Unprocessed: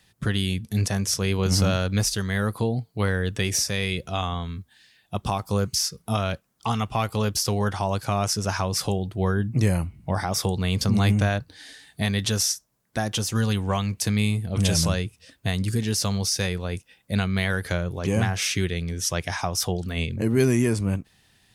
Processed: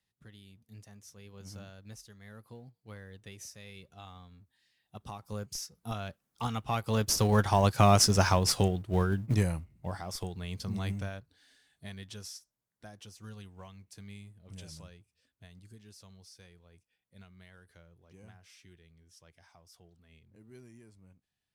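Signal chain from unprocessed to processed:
mu-law and A-law mismatch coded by mu
source passing by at 0:07.94, 13 m/s, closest 9.1 metres
in parallel at −8.5 dB: comparator with hysteresis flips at −23.5 dBFS
on the sum: expander for the loud parts 1.5 to 1, over −46 dBFS
level +2.5 dB

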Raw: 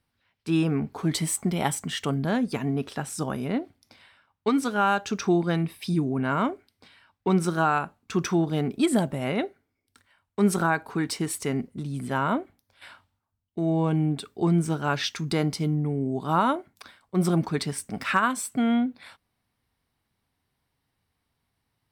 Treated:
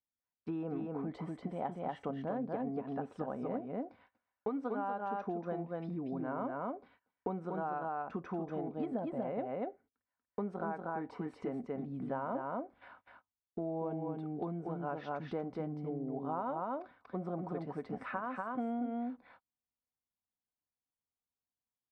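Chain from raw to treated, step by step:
dynamic equaliser 610 Hz, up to +7 dB, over −40 dBFS, Q 1.6
on a send: single-tap delay 238 ms −3.5 dB
on the sum: noise gate −51 dBFS, range −22 dB
downward compressor 6 to 1, threshold −31 dBFS, peak gain reduction 16 dB
low-pass filter 1,000 Hz 12 dB per octave
low-shelf EQ 330 Hz −8.5 dB
comb filter 4 ms, depth 31%

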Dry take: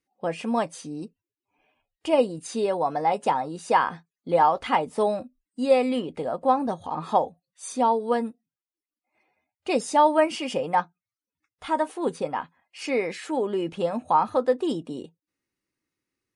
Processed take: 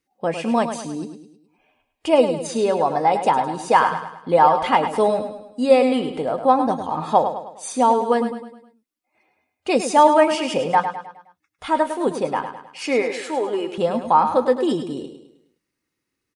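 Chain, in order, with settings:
0:13.02–0:13.78: high-pass filter 400 Hz 12 dB per octave
repeating echo 104 ms, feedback 45%, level −9 dB
level +5 dB

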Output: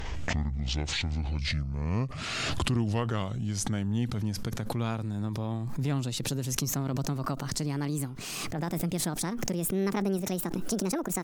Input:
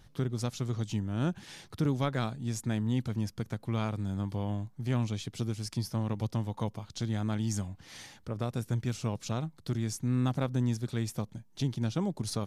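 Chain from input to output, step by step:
gliding playback speed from 53% → 169%
background raised ahead of every attack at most 22 dB per second

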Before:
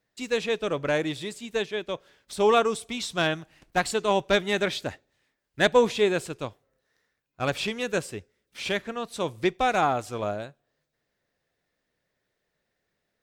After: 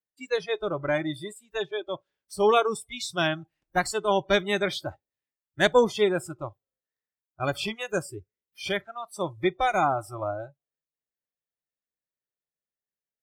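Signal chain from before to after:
noise reduction from a noise print of the clip's start 24 dB

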